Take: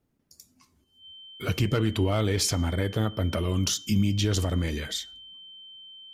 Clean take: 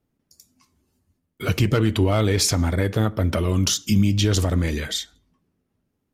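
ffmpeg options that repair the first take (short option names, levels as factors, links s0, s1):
-af "bandreject=f=3100:w=30,asetnsamples=n=441:p=0,asendcmd='0.84 volume volume 5.5dB',volume=1"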